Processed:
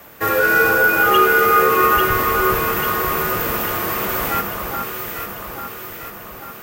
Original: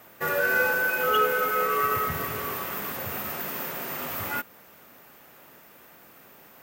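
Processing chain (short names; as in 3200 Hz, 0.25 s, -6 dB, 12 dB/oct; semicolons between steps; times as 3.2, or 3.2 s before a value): frequency shift -51 Hz; echo with dull and thin repeats by turns 0.422 s, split 1500 Hz, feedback 74%, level -2.5 dB; gain +8.5 dB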